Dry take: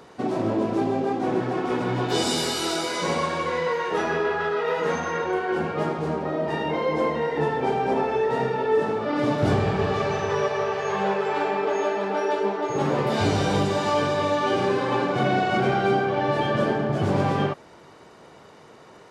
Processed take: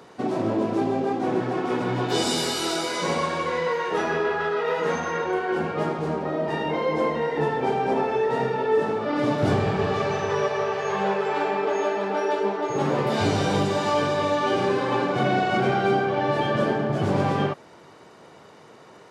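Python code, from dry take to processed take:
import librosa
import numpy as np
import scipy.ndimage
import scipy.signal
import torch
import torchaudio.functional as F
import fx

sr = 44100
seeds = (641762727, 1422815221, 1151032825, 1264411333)

y = scipy.signal.sosfilt(scipy.signal.butter(2, 82.0, 'highpass', fs=sr, output='sos'), x)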